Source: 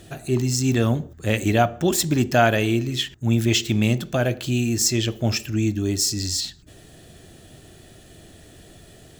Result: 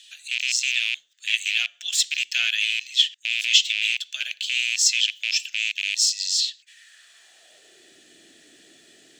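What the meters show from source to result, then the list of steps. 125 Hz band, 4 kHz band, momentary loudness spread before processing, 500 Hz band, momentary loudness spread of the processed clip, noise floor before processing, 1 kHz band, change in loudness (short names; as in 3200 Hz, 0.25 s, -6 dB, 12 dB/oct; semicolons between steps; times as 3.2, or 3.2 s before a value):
under -40 dB, +7.5 dB, 6 LU, under -35 dB, 8 LU, -48 dBFS, under -25 dB, 0.0 dB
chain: rattling part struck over -20 dBFS, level -14 dBFS; high-pass sweep 3100 Hz -> 290 Hz, 6.47–7.98; band shelf 3600 Hz +13 dB 2.7 oct; gain -12.5 dB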